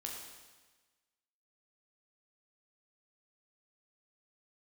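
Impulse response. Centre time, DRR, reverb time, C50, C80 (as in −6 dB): 61 ms, −1.0 dB, 1.3 s, 2.5 dB, 4.0 dB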